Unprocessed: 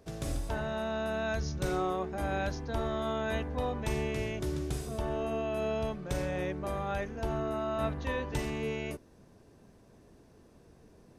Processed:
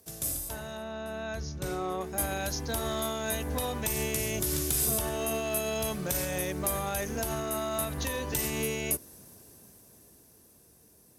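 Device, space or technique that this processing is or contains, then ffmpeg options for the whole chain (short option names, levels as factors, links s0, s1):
FM broadcast chain: -filter_complex "[0:a]highpass=f=47:w=0.5412,highpass=f=47:w=1.3066,dynaudnorm=f=260:g=21:m=5.62,acrossover=split=1200|4600[s0][s1][s2];[s0]acompressor=threshold=0.0794:ratio=4[s3];[s1]acompressor=threshold=0.0224:ratio=4[s4];[s2]acompressor=threshold=0.00891:ratio=4[s5];[s3][s4][s5]amix=inputs=3:normalize=0,aemphasis=mode=production:type=50fm,alimiter=limit=0.141:level=0:latency=1:release=141,asoftclip=type=hard:threshold=0.1,lowpass=f=15000:w=0.5412,lowpass=f=15000:w=1.3066,aemphasis=mode=production:type=50fm,asettb=1/sr,asplit=3[s6][s7][s8];[s6]atrim=end=0.774[s9];[s7]atrim=start=0.77:end=2.01,asetpts=PTS-STARTPTS,afade=t=in:d=0.004:c=qsin,afade=t=out:st=1.236:d=0.004:c=qsin,aemphasis=mode=reproduction:type=75fm[s10];[s8]atrim=start=2.006[s11];[s9][s10]acrossfade=d=0.004:c1=hsin:c2=qsin[s12];[s12][s11]acrossfade=d=0.004:c1=qsin:c2=hsin,volume=0.531"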